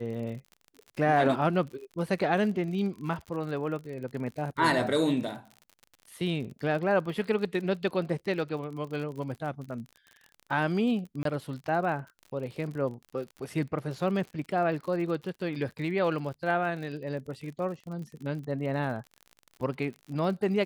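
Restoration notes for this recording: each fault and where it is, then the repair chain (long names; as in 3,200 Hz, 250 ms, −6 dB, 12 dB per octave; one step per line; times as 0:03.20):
surface crackle 48 per second −38 dBFS
0:11.23–0:11.25: drop-out 23 ms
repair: click removal
repair the gap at 0:11.23, 23 ms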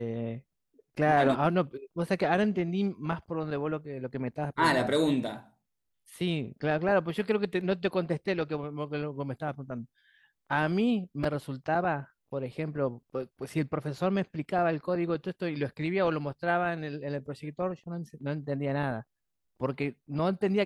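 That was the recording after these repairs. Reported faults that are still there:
none of them is left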